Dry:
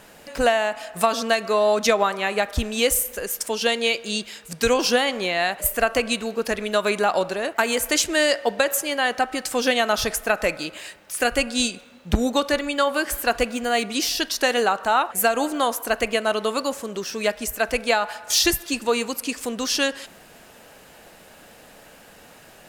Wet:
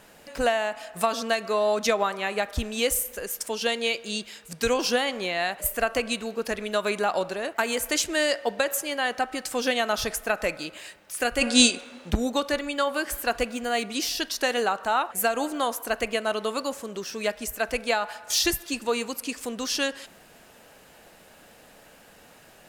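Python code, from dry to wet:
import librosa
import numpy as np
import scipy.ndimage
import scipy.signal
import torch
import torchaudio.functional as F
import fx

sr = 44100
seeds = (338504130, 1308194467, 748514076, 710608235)

y = fx.spec_box(x, sr, start_s=11.42, length_s=0.68, low_hz=230.0, high_hz=11000.0, gain_db=10)
y = y * 10.0 ** (-4.5 / 20.0)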